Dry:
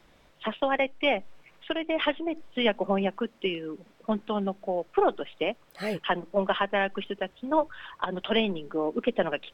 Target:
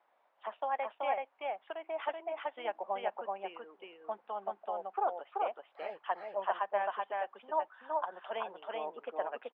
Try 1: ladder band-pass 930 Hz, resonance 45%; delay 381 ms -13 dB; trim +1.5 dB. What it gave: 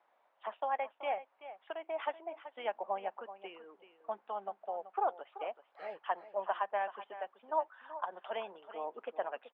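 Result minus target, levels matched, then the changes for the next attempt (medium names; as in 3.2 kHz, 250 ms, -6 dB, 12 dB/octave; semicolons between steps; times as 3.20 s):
echo-to-direct -11 dB
change: delay 381 ms -2 dB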